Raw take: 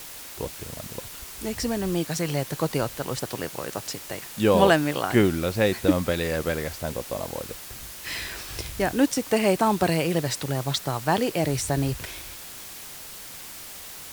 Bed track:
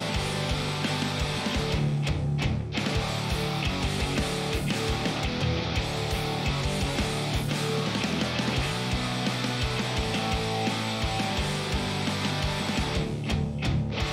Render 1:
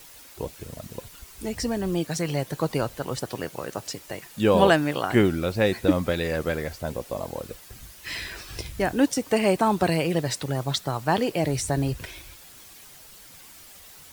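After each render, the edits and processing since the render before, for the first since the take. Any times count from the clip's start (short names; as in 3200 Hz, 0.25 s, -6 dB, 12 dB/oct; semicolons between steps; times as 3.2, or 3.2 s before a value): denoiser 9 dB, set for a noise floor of -41 dBFS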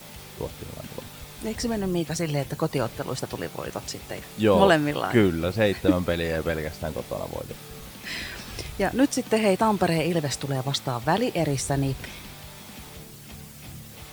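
add bed track -16 dB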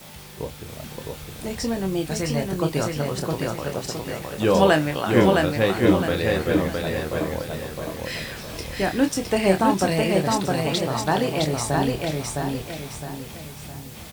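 doubler 26 ms -7.5 dB; on a send: feedback echo 0.662 s, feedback 39%, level -3 dB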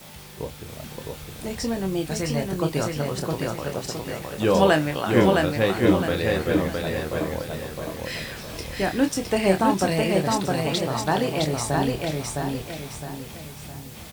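gain -1 dB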